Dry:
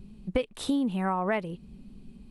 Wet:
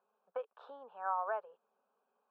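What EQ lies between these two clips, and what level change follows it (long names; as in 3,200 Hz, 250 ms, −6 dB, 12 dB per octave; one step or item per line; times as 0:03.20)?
elliptic high-pass filter 410 Hz, stop band 80 dB
transistor ladder low-pass 1,800 Hz, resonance 55%
phaser with its sweep stopped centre 830 Hz, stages 4
+3.0 dB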